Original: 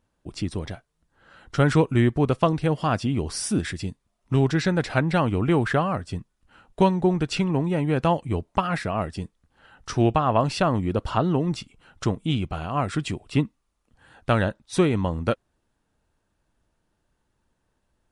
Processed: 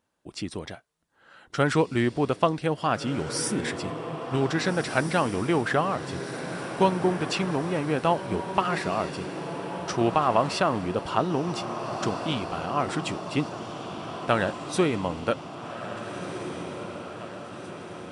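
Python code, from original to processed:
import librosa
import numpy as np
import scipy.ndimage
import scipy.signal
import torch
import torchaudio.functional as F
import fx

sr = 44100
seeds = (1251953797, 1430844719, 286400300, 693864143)

p1 = fx.highpass(x, sr, hz=320.0, slope=6)
y = p1 + fx.echo_diffused(p1, sr, ms=1674, feedback_pct=61, wet_db=-9.0, dry=0)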